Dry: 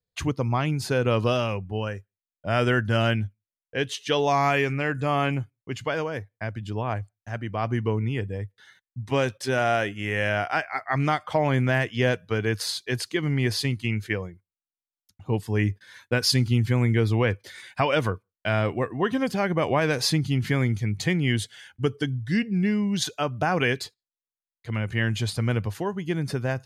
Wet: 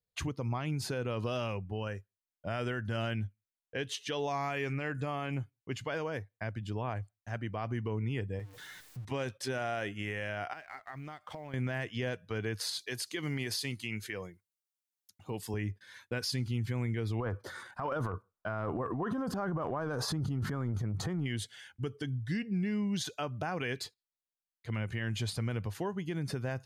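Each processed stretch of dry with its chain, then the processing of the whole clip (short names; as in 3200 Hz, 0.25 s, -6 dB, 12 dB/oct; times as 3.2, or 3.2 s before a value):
8.39–9.05 zero-crossing step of -42 dBFS + comb 6.6 ms, depth 45% + compressor 2:1, threshold -37 dBFS
10.53–11.54 G.711 law mismatch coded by A + compressor 10:1, threshold -35 dBFS
12.79–15.54 HPF 210 Hz 6 dB/oct + high shelf 3600 Hz +9 dB
17.2–21.26 resonant high shelf 1700 Hz -9.5 dB, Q 3 + transient shaper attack -2 dB, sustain +10 dB + compressor, threshold -23 dBFS
whole clip: compressor 2.5:1, threshold -25 dBFS; limiter -20.5 dBFS; gain -5 dB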